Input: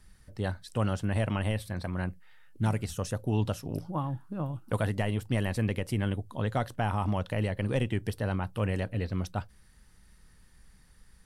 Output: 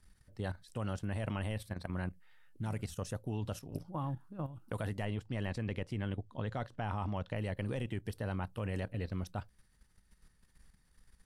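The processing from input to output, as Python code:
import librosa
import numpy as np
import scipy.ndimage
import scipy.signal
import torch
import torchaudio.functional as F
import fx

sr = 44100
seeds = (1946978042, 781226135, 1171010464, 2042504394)

y = fx.lowpass(x, sr, hz=6100.0, slope=12, at=(5.05, 7.36))
y = fx.level_steps(y, sr, step_db=11)
y = y * 10.0 ** (-3.0 / 20.0)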